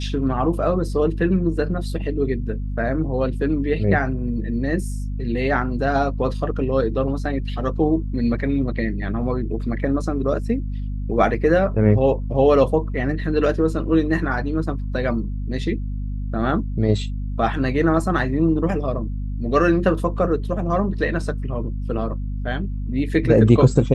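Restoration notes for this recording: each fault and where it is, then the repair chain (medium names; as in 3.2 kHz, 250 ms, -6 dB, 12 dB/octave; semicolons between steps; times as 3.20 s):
hum 50 Hz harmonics 5 -26 dBFS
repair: de-hum 50 Hz, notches 5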